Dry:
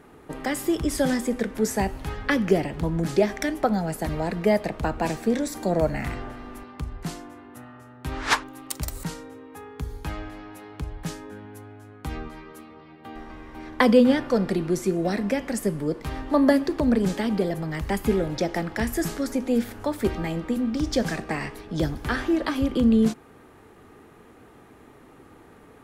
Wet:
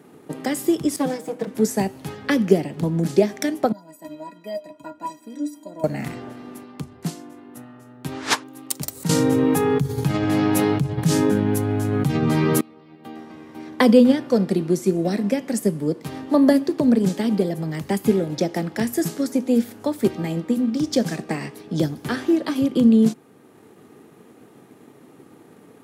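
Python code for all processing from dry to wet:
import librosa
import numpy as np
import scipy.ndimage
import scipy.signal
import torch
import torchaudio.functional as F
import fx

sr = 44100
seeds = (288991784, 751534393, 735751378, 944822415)

y = fx.chain(x, sr, fx.lower_of_two(delay_ms=6.3),
    fx.highpass(hz=190.0, slope=12),
    fx.high_shelf(hz=2200.0, db=-9.0), at=(0.96, 1.47))
y = fx.chain(y, sr, fx.peak_eq(hz=980.0, db=8.5, octaves=0.22),
    fx.stiff_resonator(f0_hz=290.0, decay_s=0.2, stiffness=0.03), at=(3.72, 5.84))
y = fx.chain(y, sr, fx.peak_eq(hz=130.0, db=13.0, octaves=0.74),
    fx.env_flatten(amount_pct=100), at=(9.09, 12.61))
y = scipy.signal.sosfilt(scipy.signal.butter(4, 130.0, 'highpass', fs=sr, output='sos'), y)
y = fx.peak_eq(y, sr, hz=1400.0, db=-8.0, octaves=2.5)
y = fx.transient(y, sr, attack_db=2, sustain_db=-3)
y = y * librosa.db_to_amplitude(5.0)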